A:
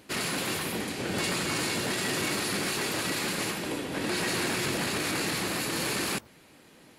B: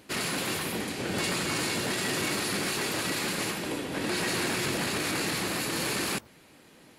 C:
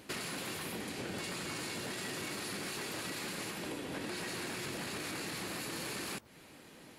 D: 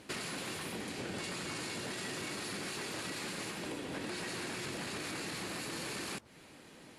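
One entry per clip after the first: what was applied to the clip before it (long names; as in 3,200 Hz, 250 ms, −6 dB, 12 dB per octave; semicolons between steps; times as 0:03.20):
no processing that can be heard
downward compressor 6 to 1, threshold −38 dBFS, peak gain reduction 11.5 dB
low-pass filter 11,000 Hz 24 dB per octave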